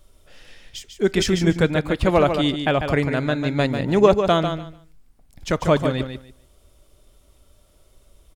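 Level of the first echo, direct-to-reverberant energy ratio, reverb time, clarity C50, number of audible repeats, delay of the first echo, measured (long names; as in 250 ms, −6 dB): −7.5 dB, no reverb audible, no reverb audible, no reverb audible, 2, 146 ms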